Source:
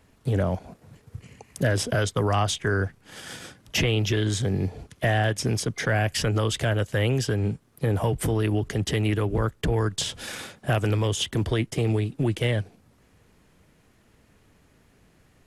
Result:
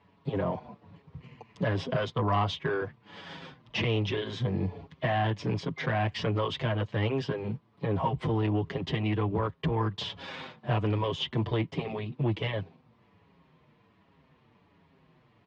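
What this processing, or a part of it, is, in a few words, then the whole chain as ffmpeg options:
barber-pole flanger into a guitar amplifier: -filter_complex "[0:a]asplit=2[link_01][link_02];[link_02]adelay=6.5,afreqshift=-1.3[link_03];[link_01][link_03]amix=inputs=2:normalize=1,asoftclip=type=tanh:threshold=-20dB,highpass=97,equalizer=frequency=160:width_type=q:width=4:gain=5,equalizer=frequency=1000:width_type=q:width=4:gain=9,equalizer=frequency=1500:width_type=q:width=4:gain=-5,lowpass=frequency=3900:width=0.5412,lowpass=frequency=3900:width=1.3066"

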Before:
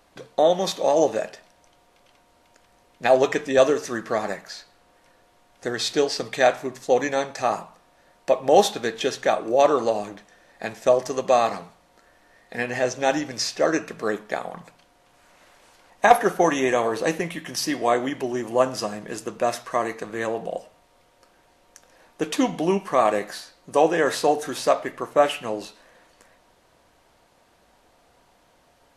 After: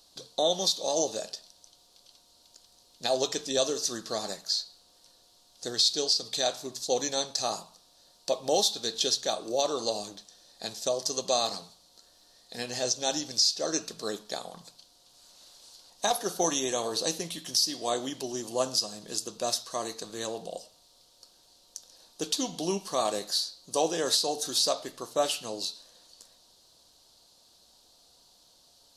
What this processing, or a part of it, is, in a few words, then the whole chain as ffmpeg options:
over-bright horn tweeter: -af "highshelf=frequency=3000:width_type=q:width=3:gain=12.5,alimiter=limit=-5dB:level=0:latency=1:release=296,volume=-8.5dB"

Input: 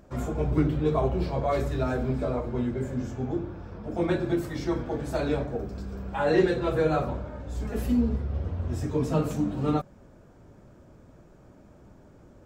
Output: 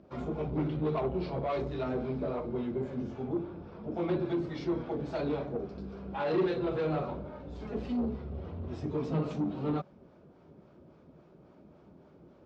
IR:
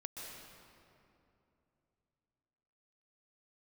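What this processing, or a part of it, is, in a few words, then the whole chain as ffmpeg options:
guitar amplifier with harmonic tremolo: -filter_complex "[0:a]acrossover=split=580[link_01][link_02];[link_01]aeval=exprs='val(0)*(1-0.5/2+0.5/2*cos(2*PI*3.6*n/s))':channel_layout=same[link_03];[link_02]aeval=exprs='val(0)*(1-0.5/2-0.5/2*cos(2*PI*3.6*n/s))':channel_layout=same[link_04];[link_03][link_04]amix=inputs=2:normalize=0,asoftclip=type=tanh:threshold=-25.5dB,highpass=92,equalizer=frequency=110:width_type=q:width=4:gain=-9,equalizer=frequency=160:width_type=q:width=4:gain=4,equalizer=frequency=380:width_type=q:width=4:gain=4,equalizer=frequency=1700:width_type=q:width=4:gain=-6,lowpass=frequency=4600:width=0.5412,lowpass=frequency=4600:width=1.3066,volume=-1dB"

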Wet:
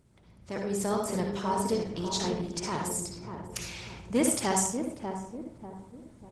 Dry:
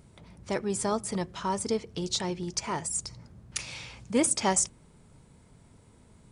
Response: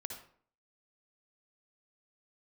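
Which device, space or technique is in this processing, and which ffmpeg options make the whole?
speakerphone in a meeting room: -filter_complex "[0:a]asettb=1/sr,asplit=3[link_01][link_02][link_03];[link_01]atrim=end=2.454[link_04];[link_02]atrim=start=2.45:end=3.29,asetpts=PTS-STARTPTS,afade=type=in:duration=0.004:curve=qsin,afade=type=out:start_time=0.836:duration=0.004:curve=qsin,bandreject=frequency=6000:width=24[link_05];[link_03]atrim=start=3.286[link_06];[link_04][link_05]acrossfade=duration=0.004:curve1=hsin:curve2=qsin[link_07];[link_07][link_06]acrossfade=duration=0.004:curve1=qsin:curve2=hsin,asplit=2[link_08][link_09];[link_09]adelay=592,lowpass=frequency=860:poles=1,volume=-6dB,asplit=2[link_10][link_11];[link_11]adelay=592,lowpass=frequency=860:poles=1,volume=0.44,asplit=2[link_12][link_13];[link_13]adelay=592,lowpass=frequency=860:poles=1,volume=0.44,asplit=2[link_14][link_15];[link_15]adelay=592,lowpass=frequency=860:poles=1,volume=0.44,asplit=2[link_16][link_17];[link_17]adelay=592,lowpass=frequency=860:poles=1,volume=0.44[link_18];[link_08][link_10][link_12][link_14][link_16][link_18]amix=inputs=6:normalize=0[link_19];[1:a]atrim=start_sample=2205[link_20];[link_19][link_20]afir=irnorm=-1:irlink=0,asplit=2[link_21][link_22];[link_22]adelay=110,highpass=300,lowpass=3400,asoftclip=type=hard:threshold=-23.5dB,volume=-19dB[link_23];[link_21][link_23]amix=inputs=2:normalize=0,dynaudnorm=framelen=100:gausssize=13:maxgain=7dB,volume=-4.5dB" -ar 48000 -c:a libopus -b:a 16k

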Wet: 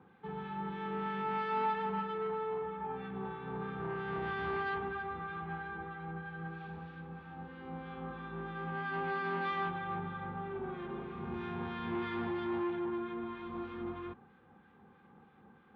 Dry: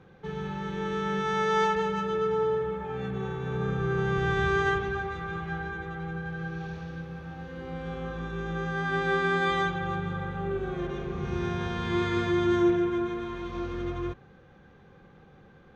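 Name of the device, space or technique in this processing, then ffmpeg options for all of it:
guitar amplifier with harmonic tremolo: -filter_complex "[0:a]acrossover=split=1300[link_01][link_02];[link_01]aeval=exprs='val(0)*(1-0.5/2+0.5/2*cos(2*PI*3.1*n/s))':channel_layout=same[link_03];[link_02]aeval=exprs='val(0)*(1-0.5/2-0.5/2*cos(2*PI*3.1*n/s))':channel_layout=same[link_04];[link_03][link_04]amix=inputs=2:normalize=0,asoftclip=type=tanh:threshold=-27.5dB,highpass=93,equalizer=frequency=130:width_type=q:width=4:gain=-8,equalizer=frequency=230:width_type=q:width=4:gain=8,equalizer=frequency=580:width_type=q:width=4:gain=-7,equalizer=frequency=860:width_type=q:width=4:gain=8,equalizer=frequency=1200:width_type=q:width=4:gain=4,lowpass=frequency=3500:width=0.5412,lowpass=frequency=3500:width=1.3066,volume=-5dB"

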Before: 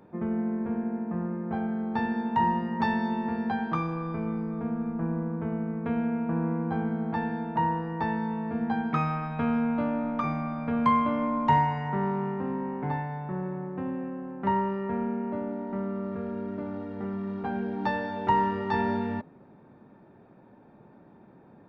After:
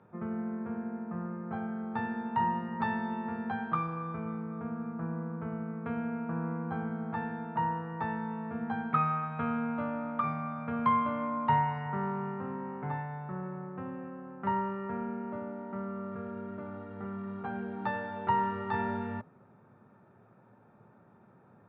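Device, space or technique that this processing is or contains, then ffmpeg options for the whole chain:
guitar cabinet: -af "highpass=83,equalizer=frequency=110:width_type=q:width=4:gain=8,equalizer=frequency=300:width_type=q:width=4:gain=-8,equalizer=frequency=1300:width_type=q:width=4:gain=9,lowpass=frequency=3500:width=0.5412,lowpass=frequency=3500:width=1.3066,volume=-5.5dB"

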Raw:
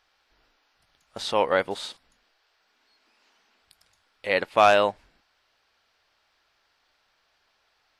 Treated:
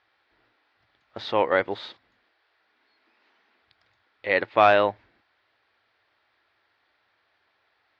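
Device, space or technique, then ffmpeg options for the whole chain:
guitar cabinet: -af "highpass=82,equalizer=frequency=110:width_type=q:width=4:gain=7,equalizer=frequency=160:width_type=q:width=4:gain=-7,equalizer=frequency=340:width_type=q:width=4:gain=5,equalizer=frequency=1900:width_type=q:width=4:gain=4,equalizer=frequency=2900:width_type=q:width=4:gain=-4,lowpass=frequency=3900:width=0.5412,lowpass=frequency=3900:width=1.3066"

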